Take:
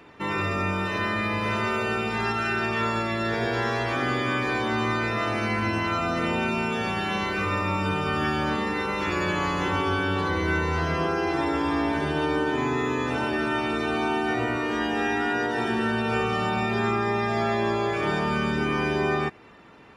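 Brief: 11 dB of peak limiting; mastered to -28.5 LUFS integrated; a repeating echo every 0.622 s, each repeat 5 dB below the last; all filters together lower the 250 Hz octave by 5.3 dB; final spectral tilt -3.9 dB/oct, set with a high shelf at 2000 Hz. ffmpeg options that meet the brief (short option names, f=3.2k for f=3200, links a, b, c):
-af "equalizer=f=250:t=o:g=-7.5,highshelf=f=2k:g=7.5,alimiter=limit=-22.5dB:level=0:latency=1,aecho=1:1:622|1244|1866|2488|3110|3732|4354:0.562|0.315|0.176|0.0988|0.0553|0.031|0.0173"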